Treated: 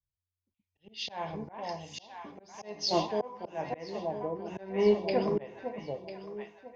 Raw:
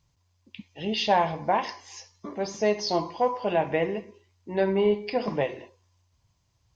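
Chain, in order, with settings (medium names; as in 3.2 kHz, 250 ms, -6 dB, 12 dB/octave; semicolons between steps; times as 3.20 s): echo whose repeats swap between lows and highs 499 ms, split 820 Hz, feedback 68%, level -4 dB; slow attack 259 ms; three bands expanded up and down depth 70%; trim -5.5 dB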